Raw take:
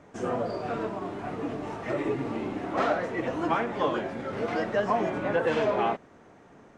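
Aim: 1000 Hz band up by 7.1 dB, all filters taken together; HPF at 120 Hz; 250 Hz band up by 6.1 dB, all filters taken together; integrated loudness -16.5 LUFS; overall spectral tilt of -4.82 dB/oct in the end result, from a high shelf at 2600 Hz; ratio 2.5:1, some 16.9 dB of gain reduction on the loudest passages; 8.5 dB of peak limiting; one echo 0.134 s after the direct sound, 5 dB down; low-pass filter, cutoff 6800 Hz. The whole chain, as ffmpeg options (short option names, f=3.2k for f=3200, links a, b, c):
-af "highpass=120,lowpass=6.8k,equalizer=f=250:t=o:g=7.5,equalizer=f=1k:t=o:g=8,highshelf=f=2.6k:g=5,acompressor=threshold=-41dB:ratio=2.5,alimiter=level_in=7.5dB:limit=-24dB:level=0:latency=1,volume=-7.5dB,aecho=1:1:134:0.562,volume=23dB"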